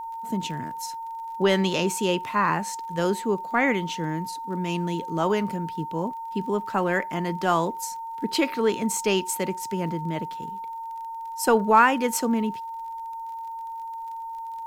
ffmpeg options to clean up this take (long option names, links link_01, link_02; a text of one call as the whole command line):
ffmpeg -i in.wav -af "adeclick=threshold=4,bandreject=frequency=910:width=30,agate=range=-21dB:threshold=-27dB" out.wav